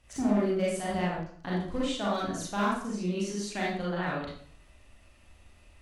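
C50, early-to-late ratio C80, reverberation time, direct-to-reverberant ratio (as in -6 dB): -0.5 dB, 5.0 dB, 0.55 s, -6.5 dB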